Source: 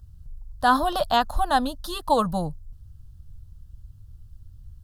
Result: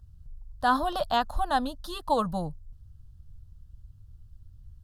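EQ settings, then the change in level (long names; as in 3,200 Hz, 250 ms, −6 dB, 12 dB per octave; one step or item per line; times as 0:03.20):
high-shelf EQ 7,700 Hz −5.5 dB
−4.5 dB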